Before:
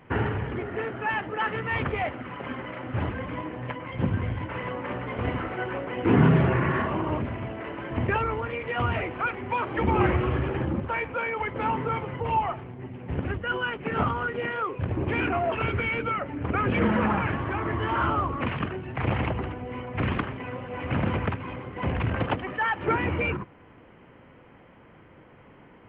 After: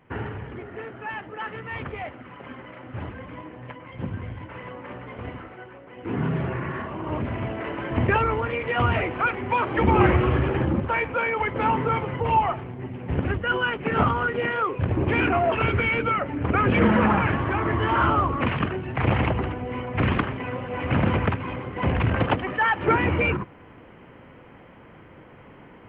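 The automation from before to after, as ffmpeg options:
-af "volume=4.47,afade=t=out:st=5.09:d=0.7:silence=0.375837,afade=t=in:st=5.79:d=0.66:silence=0.375837,afade=t=in:st=6.98:d=0.42:silence=0.316228"

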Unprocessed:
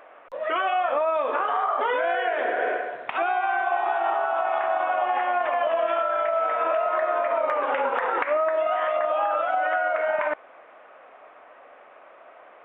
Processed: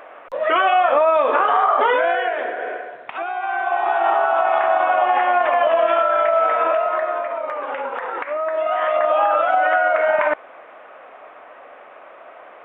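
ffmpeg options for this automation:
-af "volume=20,afade=t=out:st=1.83:d=0.73:silence=0.316228,afade=t=in:st=3.33:d=0.8:silence=0.354813,afade=t=out:st=6.45:d=0.89:silence=0.354813,afade=t=in:st=8.32:d=0.81:silence=0.354813"

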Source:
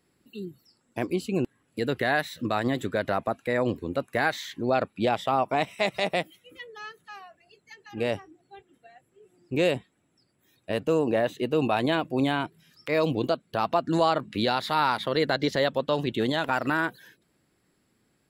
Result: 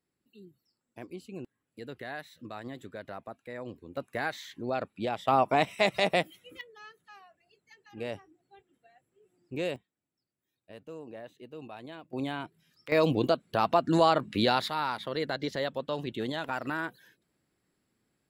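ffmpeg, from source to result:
-af "asetnsamples=n=441:p=0,asendcmd='3.97 volume volume -7.5dB;5.28 volume volume 0.5dB;6.61 volume volume -9dB;9.76 volume volume -20dB;12.13 volume volume -9dB;12.92 volume volume 0dB;14.68 volume volume -7.5dB',volume=0.178"

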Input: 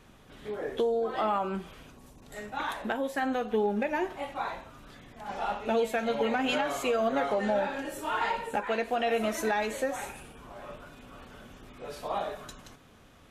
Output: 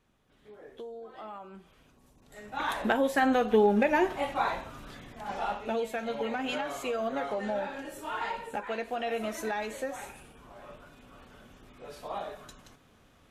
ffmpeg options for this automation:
-af "volume=1.78,afade=t=in:st=1.53:d=0.9:silence=0.375837,afade=t=in:st=2.43:d=0.4:silence=0.266073,afade=t=out:st=4.76:d=1.01:silence=0.334965"

